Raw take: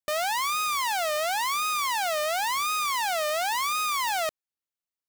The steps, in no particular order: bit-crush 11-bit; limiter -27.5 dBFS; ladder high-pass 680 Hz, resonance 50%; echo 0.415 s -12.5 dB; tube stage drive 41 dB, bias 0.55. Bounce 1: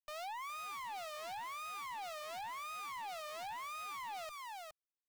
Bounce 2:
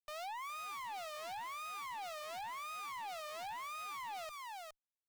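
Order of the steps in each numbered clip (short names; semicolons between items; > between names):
echo > limiter > ladder high-pass > tube stage > bit-crush; echo > limiter > ladder high-pass > bit-crush > tube stage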